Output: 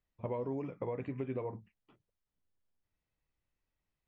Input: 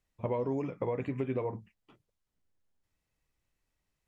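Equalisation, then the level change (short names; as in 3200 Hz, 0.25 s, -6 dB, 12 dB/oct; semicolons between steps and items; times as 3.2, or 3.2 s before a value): air absorption 130 m; -4.5 dB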